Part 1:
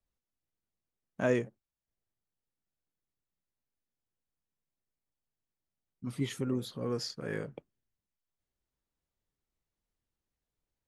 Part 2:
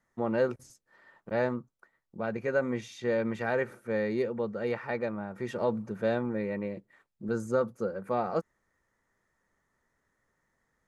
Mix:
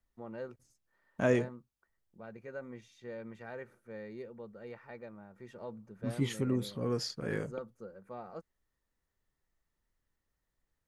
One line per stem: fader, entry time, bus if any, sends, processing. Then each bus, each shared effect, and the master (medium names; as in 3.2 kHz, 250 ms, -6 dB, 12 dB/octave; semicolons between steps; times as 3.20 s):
+0.5 dB, 0.00 s, no send, none
-15.5 dB, 0.00 s, no send, none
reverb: none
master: bass shelf 65 Hz +8 dB